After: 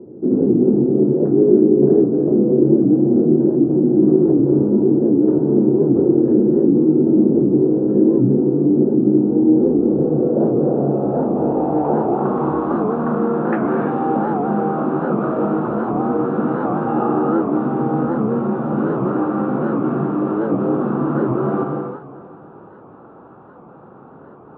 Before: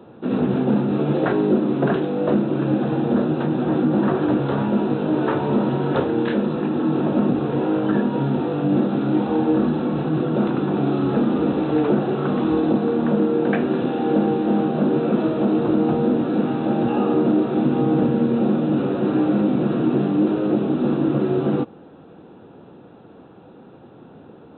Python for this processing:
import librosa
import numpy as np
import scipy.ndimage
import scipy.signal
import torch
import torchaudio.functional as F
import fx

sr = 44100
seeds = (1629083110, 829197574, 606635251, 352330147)

p1 = fx.rider(x, sr, range_db=10, speed_s=0.5)
p2 = fx.filter_sweep_lowpass(p1, sr, from_hz=360.0, to_hz=1200.0, start_s=9.32, end_s=12.86, q=3.0)
p3 = p2 + fx.echo_feedback(p2, sr, ms=360, feedback_pct=42, wet_db=-16.5, dry=0)
p4 = fx.rev_gated(p3, sr, seeds[0], gate_ms=370, shape='flat', drr_db=-0.5)
p5 = fx.record_warp(p4, sr, rpm=78.0, depth_cents=160.0)
y = p5 * librosa.db_to_amplitude(-3.0)